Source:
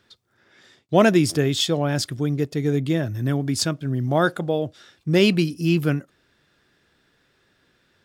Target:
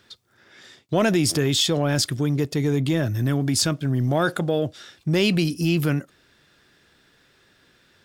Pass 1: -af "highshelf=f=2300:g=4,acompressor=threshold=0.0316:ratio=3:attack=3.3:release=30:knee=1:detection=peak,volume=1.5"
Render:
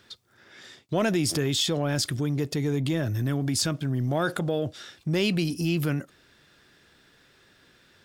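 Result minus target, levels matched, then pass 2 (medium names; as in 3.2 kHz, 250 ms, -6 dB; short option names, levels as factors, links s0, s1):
compression: peak gain reduction +4.5 dB
-af "highshelf=f=2300:g=4,acompressor=threshold=0.0708:ratio=3:attack=3.3:release=30:knee=1:detection=peak,volume=1.5"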